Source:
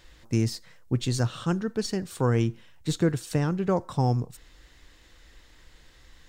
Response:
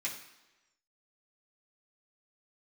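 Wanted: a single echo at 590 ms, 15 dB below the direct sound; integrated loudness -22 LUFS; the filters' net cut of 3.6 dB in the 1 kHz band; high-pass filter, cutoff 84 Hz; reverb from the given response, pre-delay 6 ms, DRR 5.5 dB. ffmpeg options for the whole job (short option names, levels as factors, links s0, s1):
-filter_complex "[0:a]highpass=84,equalizer=f=1000:t=o:g=-5,aecho=1:1:590:0.178,asplit=2[s0][s1];[1:a]atrim=start_sample=2205,adelay=6[s2];[s1][s2]afir=irnorm=-1:irlink=0,volume=0.376[s3];[s0][s3]amix=inputs=2:normalize=0,volume=2"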